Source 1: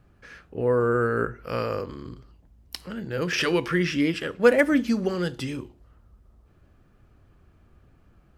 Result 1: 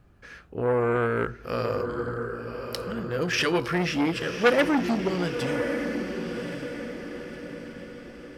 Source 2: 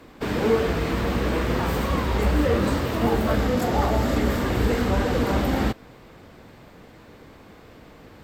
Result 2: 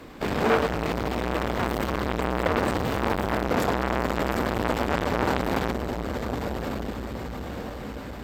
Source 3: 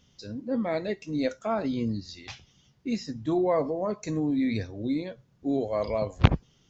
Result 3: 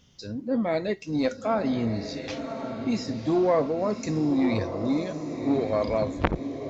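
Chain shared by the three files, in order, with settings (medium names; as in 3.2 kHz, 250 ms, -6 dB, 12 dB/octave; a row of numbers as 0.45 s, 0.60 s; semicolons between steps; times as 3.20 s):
on a send: echo that smears into a reverb 1110 ms, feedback 45%, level -8 dB; on the sum: transformer saturation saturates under 1.6 kHz; normalise loudness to -27 LUFS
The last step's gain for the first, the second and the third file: +0.5 dB, +4.0 dB, +3.0 dB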